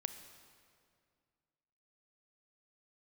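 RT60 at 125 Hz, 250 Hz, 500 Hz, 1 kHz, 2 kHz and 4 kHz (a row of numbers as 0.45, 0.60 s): 2.6, 2.5, 2.3, 2.1, 1.9, 1.7 s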